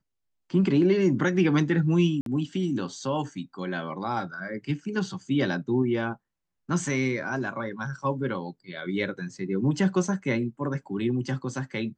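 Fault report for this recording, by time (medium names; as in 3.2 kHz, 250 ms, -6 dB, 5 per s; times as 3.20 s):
2.21–2.26 s: dropout 52 ms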